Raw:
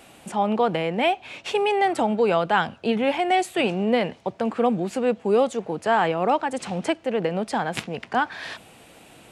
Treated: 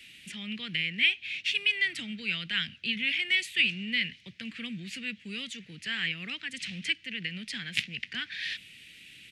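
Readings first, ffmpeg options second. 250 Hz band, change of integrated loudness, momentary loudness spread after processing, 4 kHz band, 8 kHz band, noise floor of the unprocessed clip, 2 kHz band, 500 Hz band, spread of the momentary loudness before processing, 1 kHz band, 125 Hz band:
-14.0 dB, -6.5 dB, 15 LU, +4.5 dB, -5.5 dB, -50 dBFS, +0.5 dB, -31.0 dB, 7 LU, -32.5 dB, -10.5 dB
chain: -filter_complex "[0:a]firequalizer=gain_entry='entry(170,0);entry(820,-29);entry(1900,12);entry(2900,14);entry(7600,2)':delay=0.05:min_phase=1,acrossover=split=280|870[a][b][c];[b]acompressor=threshold=-51dB:ratio=6[d];[a][d][c]amix=inputs=3:normalize=0,volume=-9dB"

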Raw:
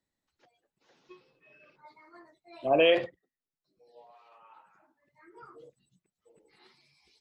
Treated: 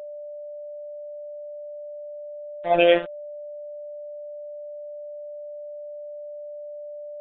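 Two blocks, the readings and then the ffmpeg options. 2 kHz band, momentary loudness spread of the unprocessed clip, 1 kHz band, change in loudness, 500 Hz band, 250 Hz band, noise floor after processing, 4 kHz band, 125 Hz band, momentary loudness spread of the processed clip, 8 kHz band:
+4.5 dB, 17 LU, +6.5 dB, -3.5 dB, +6.0 dB, +5.0 dB, -37 dBFS, +1.5 dB, +5.0 dB, 17 LU, n/a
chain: -af "afftfilt=real='hypot(re,im)*cos(PI*b)':imag='0':win_size=1024:overlap=0.75,aresample=16000,aeval=exprs='sgn(val(0))*max(abs(val(0))-0.0119,0)':c=same,aresample=44100,aeval=exprs='val(0)+0.00794*sin(2*PI*590*n/s)':c=same,aresample=8000,aresample=44100,volume=8dB"

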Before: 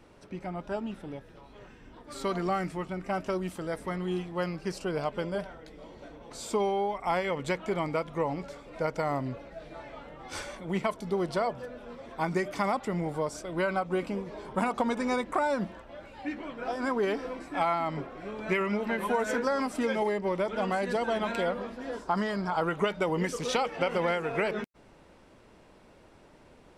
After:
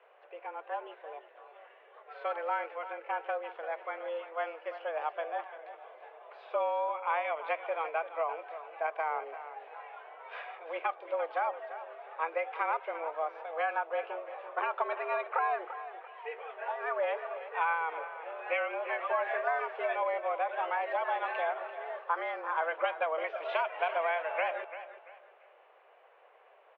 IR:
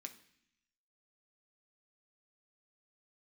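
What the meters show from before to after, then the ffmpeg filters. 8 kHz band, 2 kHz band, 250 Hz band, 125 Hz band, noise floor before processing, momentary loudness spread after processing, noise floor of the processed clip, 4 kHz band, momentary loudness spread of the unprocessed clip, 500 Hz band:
under -35 dB, -0.5 dB, -24.5 dB, under -40 dB, -56 dBFS, 14 LU, -60 dBFS, -9.0 dB, 14 LU, -4.0 dB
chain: -af "aecho=1:1:341|682|1023:0.237|0.0735|0.0228,highpass=f=320:t=q:w=0.5412,highpass=f=320:t=q:w=1.307,lowpass=f=2.8k:t=q:w=0.5176,lowpass=f=2.8k:t=q:w=0.7071,lowpass=f=2.8k:t=q:w=1.932,afreqshift=160,volume=-2.5dB"

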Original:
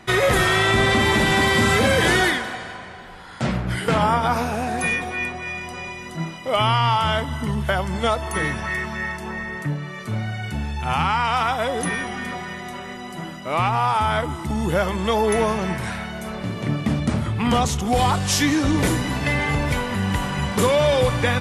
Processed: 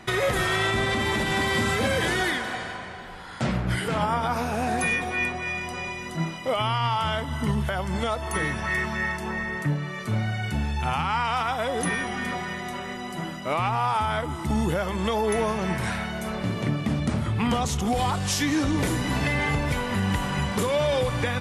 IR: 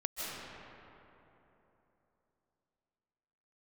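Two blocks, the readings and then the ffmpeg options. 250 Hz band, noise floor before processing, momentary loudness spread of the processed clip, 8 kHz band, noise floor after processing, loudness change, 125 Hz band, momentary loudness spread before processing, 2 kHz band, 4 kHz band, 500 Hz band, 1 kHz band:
-3.5 dB, -36 dBFS, 7 LU, -4.5 dB, -36 dBFS, -4.5 dB, -3.5 dB, 13 LU, -4.5 dB, -5.5 dB, -5.0 dB, -5.0 dB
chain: -af "alimiter=limit=-15dB:level=0:latency=1:release=342"

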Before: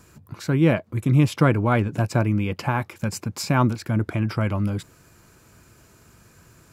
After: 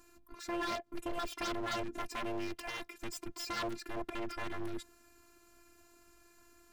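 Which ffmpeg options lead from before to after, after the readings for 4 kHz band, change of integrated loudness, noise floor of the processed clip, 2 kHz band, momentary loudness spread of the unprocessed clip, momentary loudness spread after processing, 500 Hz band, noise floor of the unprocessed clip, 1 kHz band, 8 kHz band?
-6.5 dB, -17.0 dB, -64 dBFS, -12.0 dB, 10 LU, 7 LU, -14.5 dB, -55 dBFS, -12.0 dB, -11.0 dB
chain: -af "afftfilt=real='hypot(re,im)*cos(PI*b)':imag='0':win_size=512:overlap=0.75,aeval=exprs='0.0531*(abs(mod(val(0)/0.0531+3,4)-2)-1)':c=same,volume=-5.5dB"

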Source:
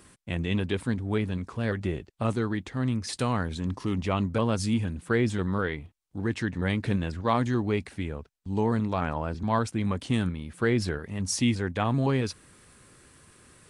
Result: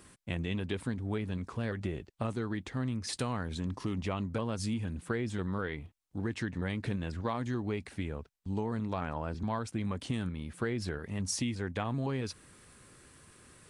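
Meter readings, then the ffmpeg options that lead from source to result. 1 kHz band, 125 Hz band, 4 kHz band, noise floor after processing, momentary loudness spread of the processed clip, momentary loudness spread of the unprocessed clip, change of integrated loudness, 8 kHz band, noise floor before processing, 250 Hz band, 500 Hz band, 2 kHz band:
-8.0 dB, -6.5 dB, -6.0 dB, -63 dBFS, 5 LU, 7 LU, -7.0 dB, -4.5 dB, -59 dBFS, -7.0 dB, -7.5 dB, -7.5 dB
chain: -af "acompressor=threshold=-28dB:ratio=6,volume=-2dB"

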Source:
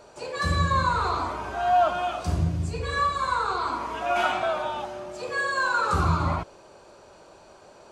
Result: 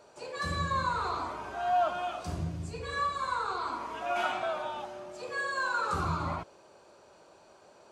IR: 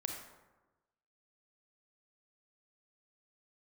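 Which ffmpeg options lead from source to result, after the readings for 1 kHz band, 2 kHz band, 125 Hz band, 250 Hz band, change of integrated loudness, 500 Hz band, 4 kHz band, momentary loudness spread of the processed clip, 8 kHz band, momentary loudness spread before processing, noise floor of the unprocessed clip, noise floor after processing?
-6.5 dB, -6.5 dB, -10.5 dB, -8.0 dB, -7.0 dB, -6.5 dB, -6.5 dB, 8 LU, -6.5 dB, 9 LU, -51 dBFS, -58 dBFS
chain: -af "highpass=f=120:p=1,volume=-6.5dB"

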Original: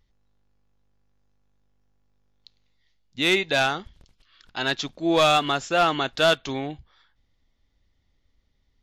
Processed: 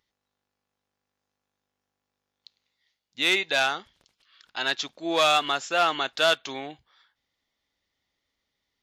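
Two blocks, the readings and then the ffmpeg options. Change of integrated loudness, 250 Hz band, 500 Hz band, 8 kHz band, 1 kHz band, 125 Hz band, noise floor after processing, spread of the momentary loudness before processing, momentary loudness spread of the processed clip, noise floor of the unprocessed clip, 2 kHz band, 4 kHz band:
-1.5 dB, -8.0 dB, -4.0 dB, 0.0 dB, -2.0 dB, -13.5 dB, -84 dBFS, 13 LU, 15 LU, -69 dBFS, -0.5 dB, 0.0 dB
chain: -af "highpass=f=720:p=1"

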